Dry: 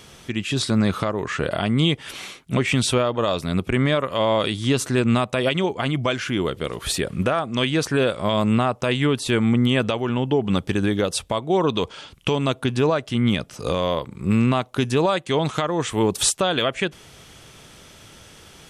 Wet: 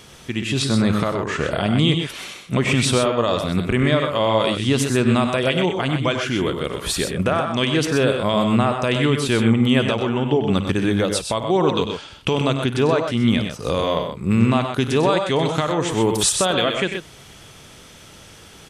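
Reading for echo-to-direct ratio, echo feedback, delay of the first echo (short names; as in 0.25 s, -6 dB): -4.5 dB, no steady repeat, 53 ms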